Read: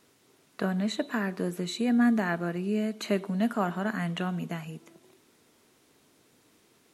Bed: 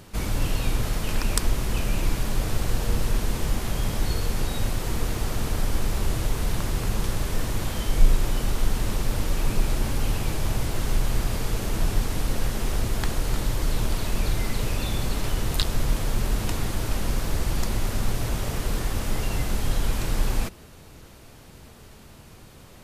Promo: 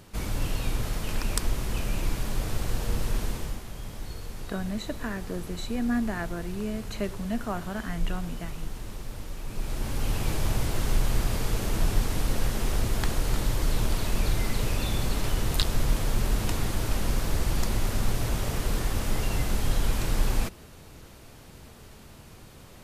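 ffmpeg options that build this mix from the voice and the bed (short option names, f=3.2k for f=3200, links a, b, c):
-filter_complex "[0:a]adelay=3900,volume=-4dB[a];[1:a]volume=7.5dB,afade=t=out:st=3.24:d=0.4:silence=0.375837,afade=t=in:st=9.47:d=0.84:silence=0.266073[b];[a][b]amix=inputs=2:normalize=0"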